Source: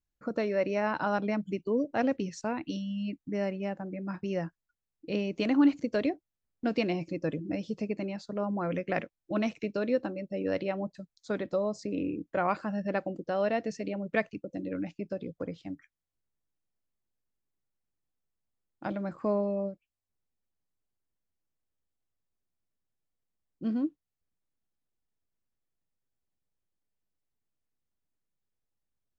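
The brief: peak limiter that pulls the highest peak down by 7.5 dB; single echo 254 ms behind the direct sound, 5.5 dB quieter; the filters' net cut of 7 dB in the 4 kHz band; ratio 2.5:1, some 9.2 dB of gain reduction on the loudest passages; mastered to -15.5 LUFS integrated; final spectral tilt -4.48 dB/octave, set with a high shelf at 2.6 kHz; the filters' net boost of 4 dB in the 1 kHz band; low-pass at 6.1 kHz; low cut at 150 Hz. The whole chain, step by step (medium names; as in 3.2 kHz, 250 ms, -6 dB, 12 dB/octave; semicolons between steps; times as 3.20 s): high-pass 150 Hz; low-pass 6.1 kHz; peaking EQ 1 kHz +6.5 dB; treble shelf 2.6 kHz -4.5 dB; peaking EQ 4 kHz -6.5 dB; compression 2.5:1, threshold -32 dBFS; peak limiter -25.5 dBFS; delay 254 ms -5.5 dB; trim +21 dB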